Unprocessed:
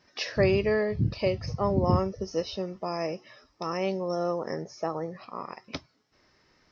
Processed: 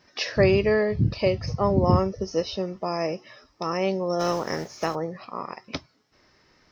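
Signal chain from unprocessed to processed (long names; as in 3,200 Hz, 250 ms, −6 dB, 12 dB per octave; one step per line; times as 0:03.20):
0:04.19–0:04.94: compressing power law on the bin magnitudes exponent 0.58
level +4 dB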